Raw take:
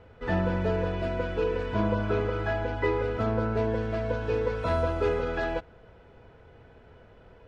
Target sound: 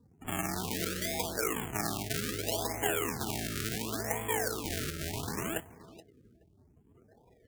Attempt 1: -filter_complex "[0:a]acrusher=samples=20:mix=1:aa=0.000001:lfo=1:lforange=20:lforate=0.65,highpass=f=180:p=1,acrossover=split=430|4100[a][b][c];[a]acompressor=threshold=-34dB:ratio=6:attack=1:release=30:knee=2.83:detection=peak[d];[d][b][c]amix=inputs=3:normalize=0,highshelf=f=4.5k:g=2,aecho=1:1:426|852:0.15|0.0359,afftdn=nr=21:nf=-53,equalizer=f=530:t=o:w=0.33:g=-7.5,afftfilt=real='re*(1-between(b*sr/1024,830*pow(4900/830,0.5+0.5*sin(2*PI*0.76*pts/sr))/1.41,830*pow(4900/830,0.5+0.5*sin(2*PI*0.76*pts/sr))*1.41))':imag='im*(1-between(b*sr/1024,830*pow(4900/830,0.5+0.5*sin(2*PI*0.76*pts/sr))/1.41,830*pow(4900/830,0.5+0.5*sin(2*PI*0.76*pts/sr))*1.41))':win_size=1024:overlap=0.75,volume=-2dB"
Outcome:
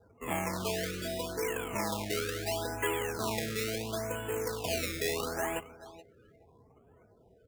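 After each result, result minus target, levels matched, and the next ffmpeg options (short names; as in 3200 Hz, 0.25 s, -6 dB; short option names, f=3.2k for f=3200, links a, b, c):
decimation with a swept rate: distortion -11 dB; 8000 Hz band -2.5 dB
-filter_complex "[0:a]acrusher=samples=60:mix=1:aa=0.000001:lfo=1:lforange=60:lforate=0.65,highpass=f=180:p=1,acrossover=split=430|4100[a][b][c];[a]acompressor=threshold=-34dB:ratio=6:attack=1:release=30:knee=2.83:detection=peak[d];[d][b][c]amix=inputs=3:normalize=0,highshelf=f=4.5k:g=2,aecho=1:1:426|852:0.15|0.0359,afftdn=nr=21:nf=-53,equalizer=f=530:t=o:w=0.33:g=-7.5,afftfilt=real='re*(1-between(b*sr/1024,830*pow(4900/830,0.5+0.5*sin(2*PI*0.76*pts/sr))/1.41,830*pow(4900/830,0.5+0.5*sin(2*PI*0.76*pts/sr))*1.41))':imag='im*(1-between(b*sr/1024,830*pow(4900/830,0.5+0.5*sin(2*PI*0.76*pts/sr))/1.41,830*pow(4900/830,0.5+0.5*sin(2*PI*0.76*pts/sr))*1.41))':win_size=1024:overlap=0.75,volume=-2dB"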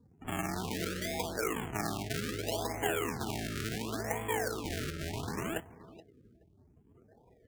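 8000 Hz band -3.5 dB
-filter_complex "[0:a]acrusher=samples=60:mix=1:aa=0.000001:lfo=1:lforange=60:lforate=0.65,highpass=f=180:p=1,acrossover=split=430|4100[a][b][c];[a]acompressor=threshold=-34dB:ratio=6:attack=1:release=30:knee=2.83:detection=peak[d];[d][b][c]amix=inputs=3:normalize=0,highshelf=f=4.5k:g=8.5,aecho=1:1:426|852:0.15|0.0359,afftdn=nr=21:nf=-53,equalizer=f=530:t=o:w=0.33:g=-7.5,afftfilt=real='re*(1-between(b*sr/1024,830*pow(4900/830,0.5+0.5*sin(2*PI*0.76*pts/sr))/1.41,830*pow(4900/830,0.5+0.5*sin(2*PI*0.76*pts/sr))*1.41))':imag='im*(1-between(b*sr/1024,830*pow(4900/830,0.5+0.5*sin(2*PI*0.76*pts/sr))/1.41,830*pow(4900/830,0.5+0.5*sin(2*PI*0.76*pts/sr))*1.41))':win_size=1024:overlap=0.75,volume=-2dB"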